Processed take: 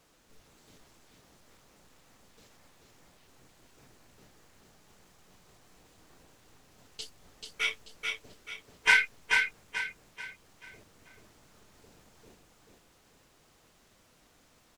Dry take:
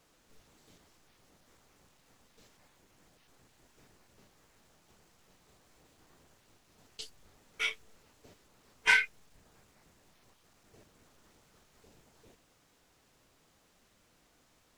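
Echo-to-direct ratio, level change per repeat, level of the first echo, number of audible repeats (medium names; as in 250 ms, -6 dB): -3.5 dB, -8.5 dB, -4.0 dB, 4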